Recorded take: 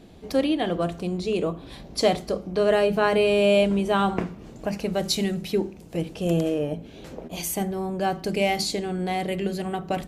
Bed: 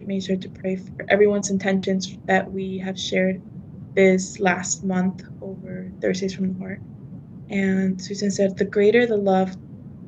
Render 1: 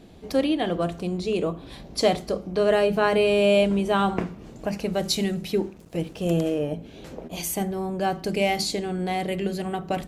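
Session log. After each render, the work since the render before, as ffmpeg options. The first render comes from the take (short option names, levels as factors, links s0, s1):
-filter_complex "[0:a]asettb=1/sr,asplit=3[s0][s1][s2];[s0]atrim=end=5.544[s3];[s1]atrim=start=5.54:end=6.57,asetpts=PTS-STARTPTS,afade=t=in:d=0.004:c=qsin,afade=t=out:st=1.026:d=0.004:c=qsin,aeval=exprs='sgn(val(0))*max(abs(val(0))-0.00224,0)':c=same[s4];[s2]atrim=start=6.566[s5];[s3][s4]acrossfade=d=0.004:c1=hsin:c2=qsin[s6];[s6][s5]acrossfade=d=0.004:c1=qsin:c2=hsin"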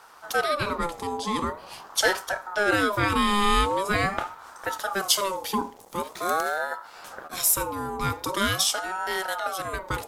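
-af "crystalizer=i=2.5:c=0,aeval=exprs='val(0)*sin(2*PI*880*n/s+880*0.3/0.44*sin(2*PI*0.44*n/s))':c=same"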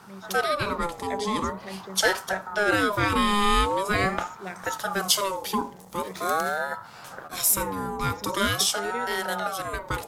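-filter_complex "[1:a]volume=0.126[s0];[0:a][s0]amix=inputs=2:normalize=0"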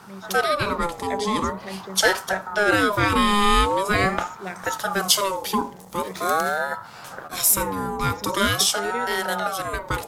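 -af "volume=1.5"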